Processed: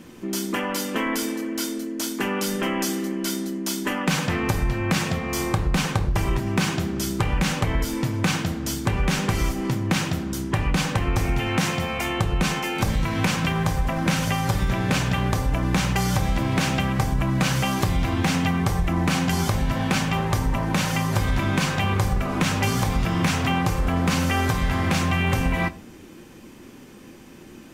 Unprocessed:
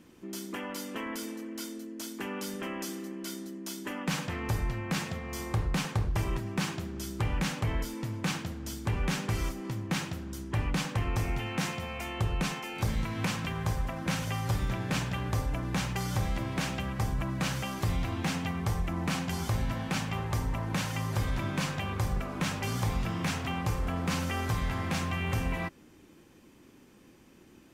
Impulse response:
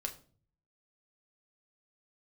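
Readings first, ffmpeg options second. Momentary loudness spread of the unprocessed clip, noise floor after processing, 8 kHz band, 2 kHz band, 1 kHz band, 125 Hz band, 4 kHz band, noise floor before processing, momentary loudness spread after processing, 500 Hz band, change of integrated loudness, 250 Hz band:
7 LU, −44 dBFS, +10.0 dB, +10.0 dB, +10.0 dB, +8.0 dB, +9.5 dB, −57 dBFS, 4 LU, +10.0 dB, +9.0 dB, +10.5 dB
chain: -filter_complex "[0:a]acompressor=threshold=-30dB:ratio=6,asplit=2[link_01][link_02];[1:a]atrim=start_sample=2205,asetrate=61740,aresample=44100[link_03];[link_02][link_03]afir=irnorm=-1:irlink=0,volume=3.5dB[link_04];[link_01][link_04]amix=inputs=2:normalize=0,volume=6.5dB"

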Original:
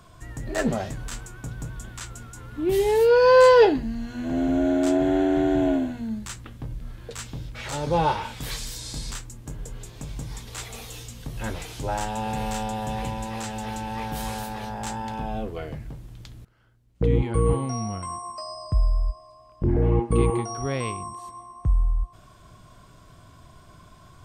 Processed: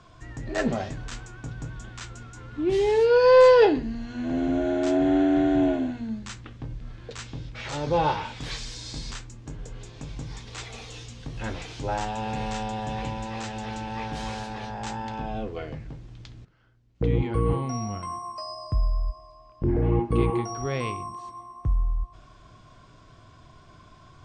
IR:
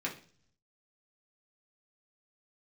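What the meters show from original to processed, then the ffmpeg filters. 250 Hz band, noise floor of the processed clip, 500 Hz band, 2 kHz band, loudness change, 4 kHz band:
−0.5 dB, −52 dBFS, −1.0 dB, −2.0 dB, −1.0 dB, −1.5 dB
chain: -filter_complex "[0:a]lowpass=frequency=6500:width=0.5412,lowpass=frequency=6500:width=1.3066,asplit=2[link_01][link_02];[1:a]atrim=start_sample=2205[link_03];[link_02][link_03]afir=irnorm=-1:irlink=0,volume=-13.5dB[link_04];[link_01][link_04]amix=inputs=2:normalize=0,asoftclip=type=tanh:threshold=-3.5dB,volume=-2dB"

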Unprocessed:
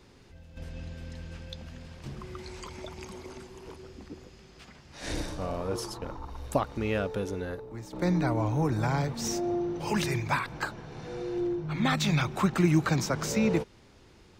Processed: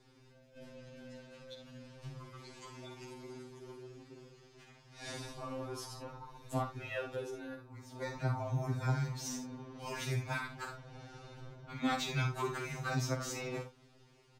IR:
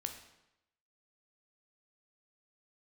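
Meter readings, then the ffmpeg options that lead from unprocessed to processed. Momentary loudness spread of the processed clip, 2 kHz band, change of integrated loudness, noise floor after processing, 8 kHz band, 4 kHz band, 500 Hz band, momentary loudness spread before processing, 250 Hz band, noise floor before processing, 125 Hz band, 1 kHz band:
17 LU, −7.5 dB, −10.0 dB, −63 dBFS, −7.0 dB, −7.5 dB, −10.0 dB, 18 LU, −13.5 dB, −56 dBFS, −7.5 dB, −8.0 dB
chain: -af "asoftclip=type=hard:threshold=-14.5dB,aecho=1:1:48|72:0.376|0.266,afftfilt=real='re*2.45*eq(mod(b,6),0)':imag='im*2.45*eq(mod(b,6),0)':win_size=2048:overlap=0.75,volume=-6dB"

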